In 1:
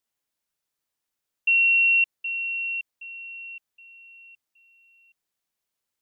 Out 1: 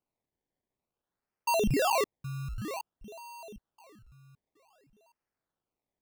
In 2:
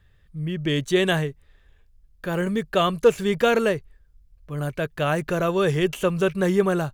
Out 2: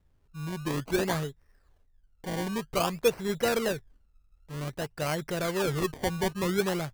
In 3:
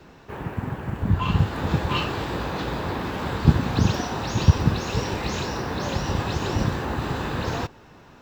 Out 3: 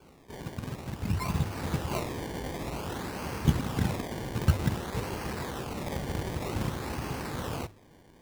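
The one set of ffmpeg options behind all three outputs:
-af "bandreject=frequency=50:width_type=h:width=6,bandreject=frequency=100:width_type=h:width=6,acrusher=samples=23:mix=1:aa=0.000001:lfo=1:lforange=23:lforate=0.53,volume=-7.5dB"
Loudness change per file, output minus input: −10.5, −7.5, −8.0 LU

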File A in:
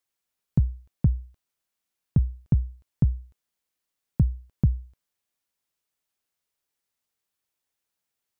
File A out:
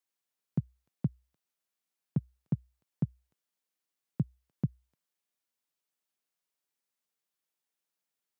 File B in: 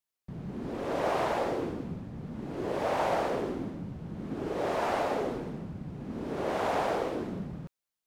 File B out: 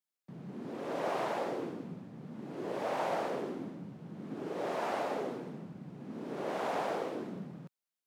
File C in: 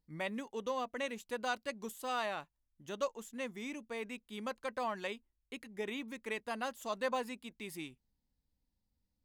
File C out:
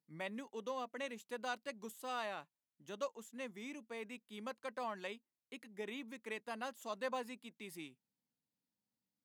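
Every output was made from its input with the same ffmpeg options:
-af "highpass=frequency=140:width=0.5412,highpass=frequency=140:width=1.3066,volume=-5dB"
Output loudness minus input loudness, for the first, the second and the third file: −10.0, −5.0, −5.0 LU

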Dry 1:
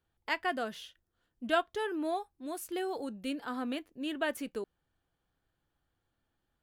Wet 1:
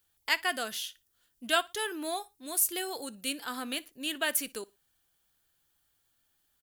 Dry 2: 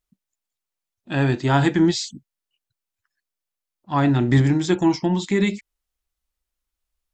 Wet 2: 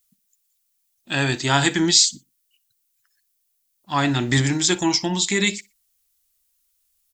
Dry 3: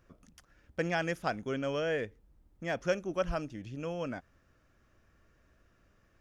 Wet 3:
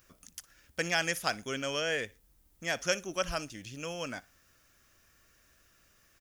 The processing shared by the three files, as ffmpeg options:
-af "aecho=1:1:60|120:0.0708|0.0191,crystalizer=i=10:c=0,volume=-4.5dB"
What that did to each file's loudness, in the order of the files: +4.0, +1.0, +1.5 LU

